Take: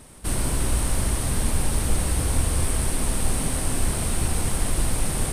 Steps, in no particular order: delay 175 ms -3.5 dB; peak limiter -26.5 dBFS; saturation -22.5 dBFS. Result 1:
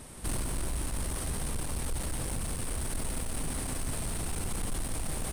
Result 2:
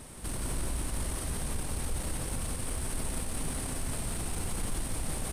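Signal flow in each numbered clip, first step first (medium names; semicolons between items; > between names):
saturation > delay > peak limiter; peak limiter > saturation > delay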